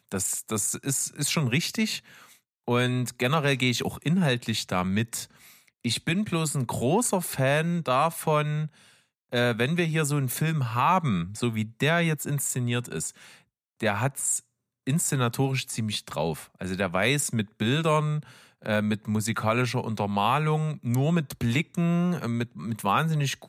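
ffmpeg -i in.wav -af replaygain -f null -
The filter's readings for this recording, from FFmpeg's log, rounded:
track_gain = +7.2 dB
track_peak = 0.232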